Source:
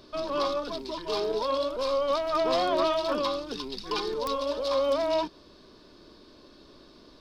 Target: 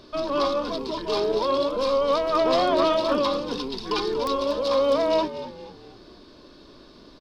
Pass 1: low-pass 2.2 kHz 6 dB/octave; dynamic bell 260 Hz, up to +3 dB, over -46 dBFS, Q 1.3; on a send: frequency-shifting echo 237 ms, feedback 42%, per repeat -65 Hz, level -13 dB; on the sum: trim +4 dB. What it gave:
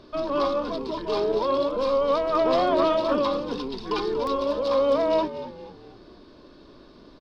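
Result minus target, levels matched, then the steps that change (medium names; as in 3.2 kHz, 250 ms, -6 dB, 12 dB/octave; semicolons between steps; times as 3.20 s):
8 kHz band -7.0 dB
change: low-pass 8.2 kHz 6 dB/octave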